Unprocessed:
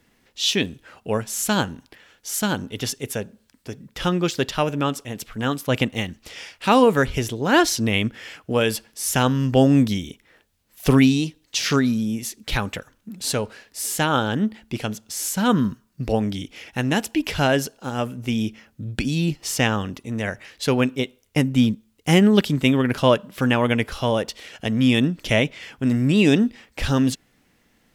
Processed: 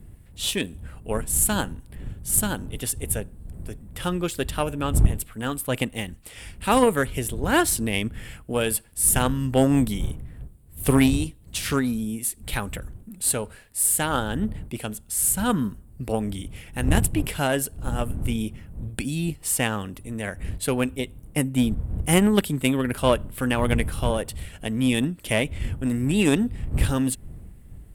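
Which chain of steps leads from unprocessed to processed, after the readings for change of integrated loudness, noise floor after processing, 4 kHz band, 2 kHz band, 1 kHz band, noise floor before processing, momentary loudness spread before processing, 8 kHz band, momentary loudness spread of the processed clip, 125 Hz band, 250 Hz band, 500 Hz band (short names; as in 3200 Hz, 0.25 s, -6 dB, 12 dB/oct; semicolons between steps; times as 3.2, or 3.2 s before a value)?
-2.5 dB, -48 dBFS, -5.5 dB, -4.0 dB, -3.5 dB, -63 dBFS, 13 LU, +4.0 dB, 14 LU, -2.5 dB, -4.0 dB, -3.5 dB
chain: wind noise 80 Hz -27 dBFS; added harmonics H 3 -17 dB, 8 -35 dB, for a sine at -1.5 dBFS; resonant high shelf 7300 Hz +8 dB, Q 3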